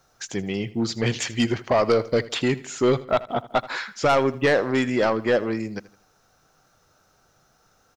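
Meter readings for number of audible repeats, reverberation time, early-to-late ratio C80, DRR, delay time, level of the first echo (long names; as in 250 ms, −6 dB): 3, no reverb audible, no reverb audible, no reverb audible, 80 ms, −18.0 dB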